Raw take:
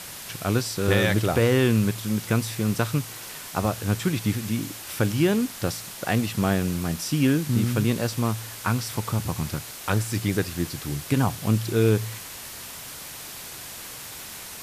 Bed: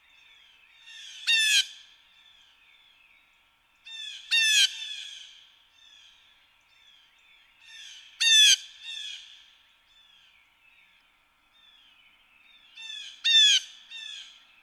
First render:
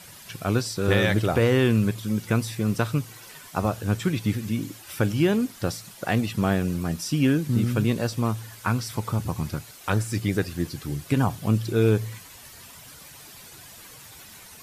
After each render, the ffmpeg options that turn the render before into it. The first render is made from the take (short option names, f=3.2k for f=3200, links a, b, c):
-af "afftdn=nr=10:nf=-39"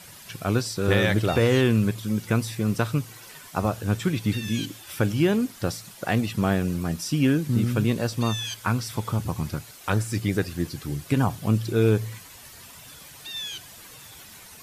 -filter_complex "[1:a]volume=-15.5dB[a];[0:a][a]amix=inputs=2:normalize=0"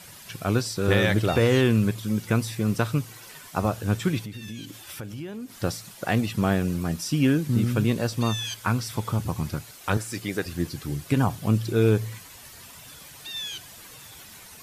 -filter_complex "[0:a]asettb=1/sr,asplit=3[a][b][c];[a]atrim=end=4.214[d];[b]atrim=start=4.21:end=5.6,asetpts=PTS-STARTPTS,afade=t=in:d=0.004:c=qsin,afade=t=out:st=1.386:d=0.004:c=qsin,acompressor=threshold=-35dB:ratio=4:attack=3.2:release=140:knee=1:detection=peak[e];[c]atrim=start=5.596[f];[d][e]acrossfade=d=0.004:c1=hsin:c2=qsin[g];[g][f]acrossfade=d=0.004:c1=qsin:c2=hsin,asettb=1/sr,asplit=3[h][i][j];[h]atrim=end=9.974[k];[i]atrim=start=9.97:end=10.46,asetpts=PTS-STARTPTS,afade=t=in:d=0.004:c=qsin,afade=t=out:st=0.486:d=0.004:c=qsin,highpass=f=360:p=1[l];[j]atrim=start=10.456[m];[k][l]acrossfade=d=0.004:c1=hsin:c2=qsin[n];[n][m]acrossfade=d=0.004:c1=qsin:c2=hsin"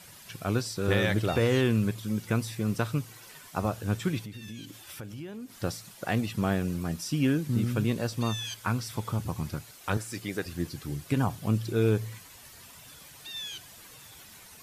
-af "volume=-4.5dB"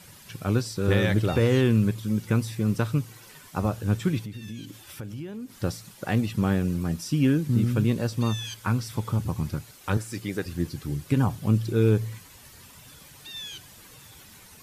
-af "lowshelf=f=400:g=5.5,bandreject=f=680:w=12"